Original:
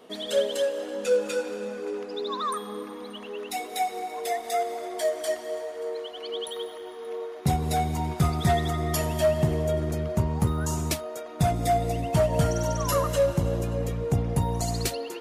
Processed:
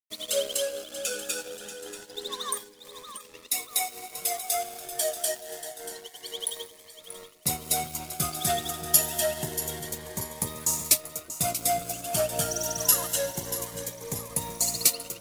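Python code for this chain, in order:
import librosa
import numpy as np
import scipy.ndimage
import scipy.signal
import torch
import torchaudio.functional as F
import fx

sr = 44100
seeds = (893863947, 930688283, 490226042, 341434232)

p1 = fx.riaa(x, sr, side='recording')
p2 = fx.over_compress(p1, sr, threshold_db=-48.0, ratio=-1.0, at=(2.63, 3.11), fade=0.02)
p3 = np.sign(p2) * np.maximum(np.abs(p2) - 10.0 ** (-36.5 / 20.0), 0.0)
p4 = p3 + fx.echo_split(p3, sr, split_hz=590.0, low_ms=371, high_ms=635, feedback_pct=52, wet_db=-12, dry=0)
y = fx.notch_cascade(p4, sr, direction='rising', hz=0.27)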